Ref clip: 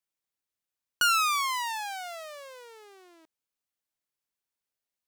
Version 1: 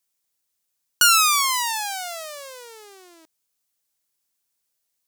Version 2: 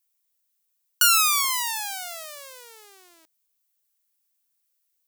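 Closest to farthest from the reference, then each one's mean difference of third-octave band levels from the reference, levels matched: 1, 2; 2.0 dB, 3.0 dB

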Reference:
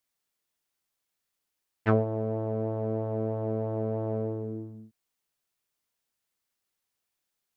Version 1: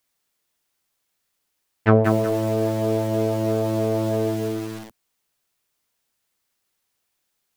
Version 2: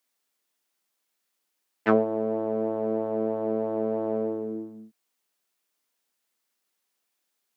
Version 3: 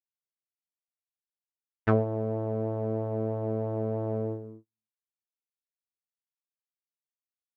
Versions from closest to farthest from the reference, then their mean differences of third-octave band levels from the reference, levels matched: 3, 2, 1; 1.5 dB, 2.5 dB, 10.5 dB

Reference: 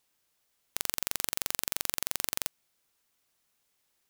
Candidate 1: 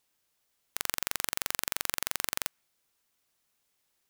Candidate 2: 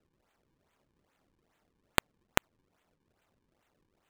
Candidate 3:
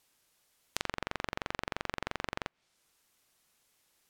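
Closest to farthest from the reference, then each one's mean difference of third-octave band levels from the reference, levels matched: 1, 3, 2; 1.5 dB, 11.0 dB, 30.5 dB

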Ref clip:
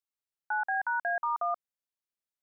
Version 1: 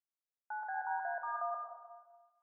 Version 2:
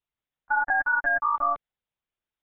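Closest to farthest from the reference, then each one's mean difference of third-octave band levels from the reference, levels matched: 1, 2; 3.0 dB, 4.0 dB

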